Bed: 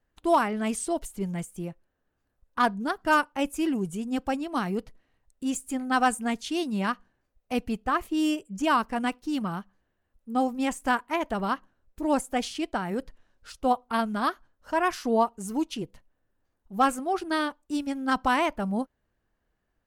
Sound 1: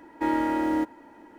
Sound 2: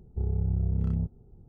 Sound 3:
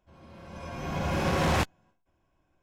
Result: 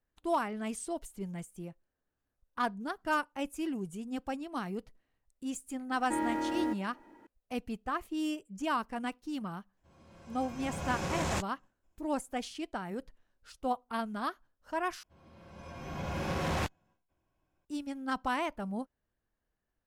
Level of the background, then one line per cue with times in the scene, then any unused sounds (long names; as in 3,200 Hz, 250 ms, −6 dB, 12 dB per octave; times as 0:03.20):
bed −8.5 dB
0:05.89: mix in 1 −7.5 dB
0:09.77: mix in 3 −8.5 dB + parametric band 7,400 Hz +10 dB 0.74 octaves
0:15.03: overwrite with 3 −7 dB
not used: 2